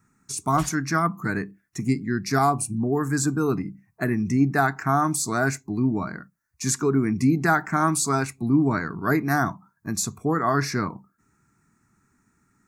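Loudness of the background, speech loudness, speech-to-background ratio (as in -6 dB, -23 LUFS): -41.5 LUFS, -24.0 LUFS, 17.5 dB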